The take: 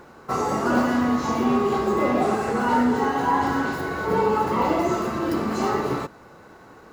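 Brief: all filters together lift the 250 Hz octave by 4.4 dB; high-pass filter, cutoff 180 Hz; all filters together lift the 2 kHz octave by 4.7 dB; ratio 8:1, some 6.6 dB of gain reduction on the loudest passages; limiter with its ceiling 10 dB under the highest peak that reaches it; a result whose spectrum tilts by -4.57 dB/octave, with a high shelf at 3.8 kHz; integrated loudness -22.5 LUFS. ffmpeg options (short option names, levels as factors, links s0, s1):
-af "highpass=180,equalizer=f=250:t=o:g=6,equalizer=f=2000:t=o:g=8,highshelf=f=3800:g=-6.5,acompressor=threshold=0.112:ratio=8,volume=2.24,alimiter=limit=0.188:level=0:latency=1"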